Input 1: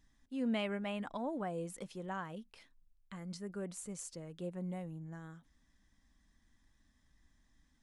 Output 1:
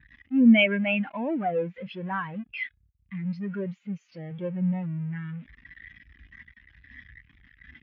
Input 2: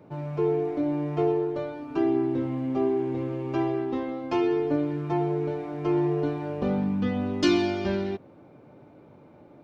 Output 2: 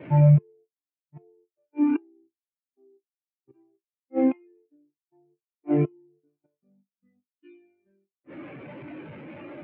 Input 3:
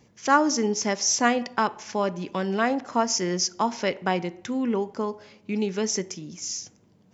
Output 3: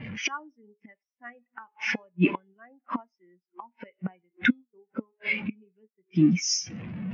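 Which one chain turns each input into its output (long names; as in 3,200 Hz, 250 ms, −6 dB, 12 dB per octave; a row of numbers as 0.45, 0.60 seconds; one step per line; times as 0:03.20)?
converter with a step at zero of −32.5 dBFS
high-shelf EQ 4,600 Hz −10 dB
gate with flip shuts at −22 dBFS, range −25 dB
Chebyshev low-pass filter 6,900 Hz, order 6
parametric band 2,600 Hz +13.5 dB 2 octaves
noise gate with hold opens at −41 dBFS
low-pass that shuts in the quiet parts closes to 1,800 Hz, open at −31.5 dBFS
high-pass filter 48 Hz 24 dB per octave
hum removal 421.8 Hz, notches 39
every bin expanded away from the loudest bin 2.5 to 1
normalise the peak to −9 dBFS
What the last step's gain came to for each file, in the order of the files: +7.5, +8.0, +2.5 decibels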